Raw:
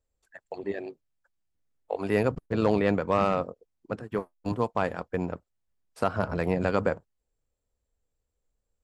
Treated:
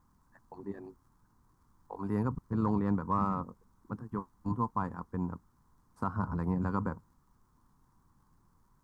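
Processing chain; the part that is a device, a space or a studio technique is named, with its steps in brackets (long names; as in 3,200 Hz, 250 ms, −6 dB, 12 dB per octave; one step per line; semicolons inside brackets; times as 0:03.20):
vinyl LP (surface crackle; pink noise bed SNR 32 dB)
drawn EQ curve 240 Hz 0 dB, 630 Hz −19 dB, 1,000 Hz +3 dB, 2,600 Hz −27 dB, 6,100 Hz −14 dB
level −1.5 dB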